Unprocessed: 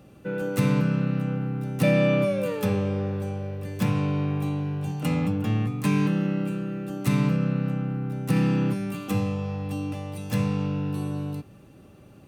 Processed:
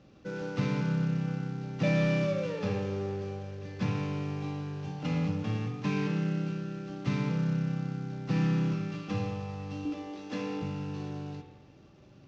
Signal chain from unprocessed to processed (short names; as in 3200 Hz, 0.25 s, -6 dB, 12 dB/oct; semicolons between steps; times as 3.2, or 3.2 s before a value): CVSD 32 kbps; 9.85–10.62 resonant low shelf 190 Hz -13.5 dB, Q 3; spring tank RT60 1.2 s, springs 43 ms, chirp 45 ms, DRR 5.5 dB; gain -6.5 dB